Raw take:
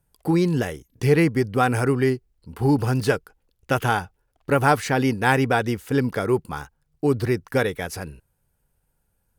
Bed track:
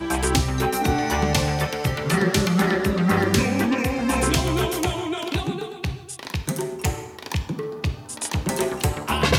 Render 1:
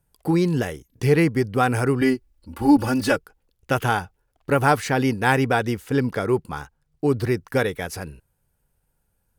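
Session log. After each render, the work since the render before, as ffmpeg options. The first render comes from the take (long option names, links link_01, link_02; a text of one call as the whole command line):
ffmpeg -i in.wav -filter_complex "[0:a]asettb=1/sr,asplit=3[link_01][link_02][link_03];[link_01]atrim=end=2.014[link_04];[link_02]atrim=start=2.01:end=3.16,asetpts=PTS-STARTPTS,afade=type=in:duration=0.004:curve=qsin,afade=type=out:start_time=1.146:duration=0.004:curve=qsin,aecho=1:1:3.5:0.95,atrim=end_sample=50715[link_05];[link_03]atrim=start=3.156[link_06];[link_04][link_05]acrossfade=duration=0.004:curve1=hsin:curve2=qsin[link_07];[link_07][link_06]acrossfade=duration=0.004:curve1=qsin:curve2=hsin,asettb=1/sr,asplit=3[link_08][link_09][link_10];[link_08]atrim=end=5.844[link_11];[link_09]atrim=start=5.84:end=7.15,asetpts=PTS-STARTPTS,afade=type=in:duration=0.004:curve=qsin,afade=type=out:start_time=1.306:duration=0.004:curve=qsin,highshelf=frequency=11000:gain=-6[link_12];[link_10]atrim=start=7.146[link_13];[link_11][link_12]acrossfade=duration=0.004:curve1=hsin:curve2=qsin[link_14];[link_14][link_13]acrossfade=duration=0.004:curve1=qsin:curve2=hsin" out.wav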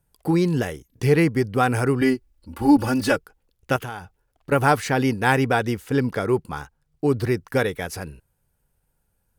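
ffmpeg -i in.wav -filter_complex "[0:a]asettb=1/sr,asplit=3[link_01][link_02][link_03];[link_01]atrim=end=3.764[link_04];[link_02]atrim=start=3.76:end=4.52,asetpts=PTS-STARTPTS,afade=type=in:duration=0.004:curve=qsin,afade=type=out:start_time=0.756:duration=0.004:curve=qsin,acompressor=threshold=-32dB:ratio=3:attack=3.2:release=140:knee=1:detection=peak[link_05];[link_03]atrim=start=4.516[link_06];[link_04][link_05]acrossfade=duration=0.004:curve1=hsin:curve2=qsin[link_07];[link_07][link_06]acrossfade=duration=0.004:curve1=qsin:curve2=hsin" out.wav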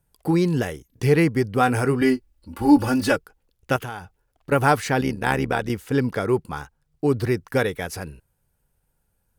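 ffmpeg -i in.wav -filter_complex "[0:a]asettb=1/sr,asplit=3[link_01][link_02][link_03];[link_01]atrim=end=1.574[link_04];[link_02]atrim=start=1.57:end=3.07,asetpts=PTS-STARTPTS,afade=type=in:duration=0.004:curve=qsin,afade=type=out:start_time=1.496:duration=0.004:curve=qsin,asplit=2[link_05][link_06];[link_06]adelay=20,volume=-11.5dB[link_07];[link_05][link_07]amix=inputs=2:normalize=0,atrim=end_sample=66150[link_08];[link_03]atrim=start=3.066[link_09];[link_04][link_08]acrossfade=duration=0.004:curve1=hsin:curve2=qsin[link_10];[link_10][link_09]acrossfade=duration=0.004:curve1=qsin:curve2=hsin,asettb=1/sr,asplit=3[link_11][link_12][link_13];[link_11]atrim=end=5.014[link_14];[link_12]atrim=start=5.01:end=5.7,asetpts=PTS-STARTPTS,afade=type=in:duration=0.004:curve=qsin,afade=type=out:start_time=0.686:duration=0.004:curve=qsin,tremolo=f=74:d=0.75[link_15];[link_13]atrim=start=5.696[link_16];[link_14][link_15]acrossfade=duration=0.004:curve1=hsin:curve2=qsin[link_17];[link_17][link_16]acrossfade=duration=0.004:curve1=qsin:curve2=hsin" out.wav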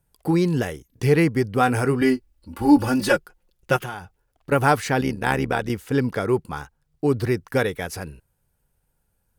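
ffmpeg -i in.wav -filter_complex "[0:a]asettb=1/sr,asplit=3[link_01][link_02][link_03];[link_01]atrim=end=2.994[link_04];[link_02]atrim=start=2.99:end=3.94,asetpts=PTS-STARTPTS,afade=type=in:duration=0.004:curve=qsin,afade=type=out:start_time=0.946:duration=0.004:curve=qsin,aecho=1:1:5.6:0.63,atrim=end_sample=41895[link_05];[link_03]atrim=start=3.936[link_06];[link_04][link_05]acrossfade=duration=0.004:curve1=hsin:curve2=qsin[link_07];[link_07][link_06]acrossfade=duration=0.004:curve1=qsin:curve2=hsin" out.wav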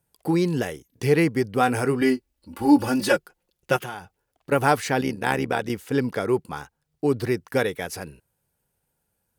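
ffmpeg -i in.wav -af "highpass=frequency=180:poles=1,equalizer=frequency=1300:width=1.5:gain=-2.5" out.wav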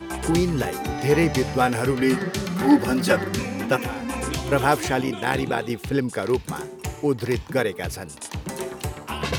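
ffmpeg -i in.wav -i bed.wav -filter_complex "[1:a]volume=-7dB[link_01];[0:a][link_01]amix=inputs=2:normalize=0" out.wav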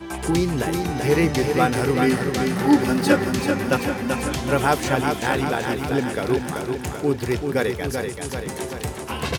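ffmpeg -i in.wav -af "aecho=1:1:386|772|1158|1544|1930|2316|2702|3088:0.531|0.313|0.185|0.109|0.0643|0.038|0.0224|0.0132" out.wav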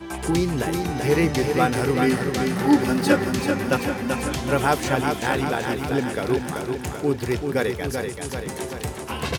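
ffmpeg -i in.wav -af "volume=-1dB" out.wav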